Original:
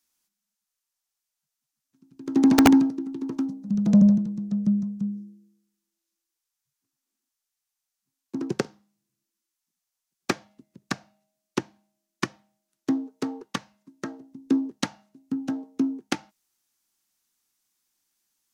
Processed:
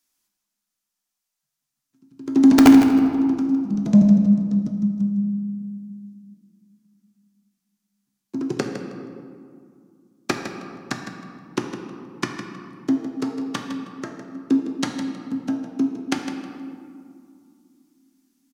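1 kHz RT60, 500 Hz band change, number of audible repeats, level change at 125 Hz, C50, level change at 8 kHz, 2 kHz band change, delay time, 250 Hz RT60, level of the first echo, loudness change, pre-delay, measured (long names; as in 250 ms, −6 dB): 2.2 s, +3.5 dB, 2, +3.5 dB, 4.0 dB, +2.0 dB, +3.0 dB, 158 ms, 3.5 s, −10.0 dB, +4.5 dB, 3 ms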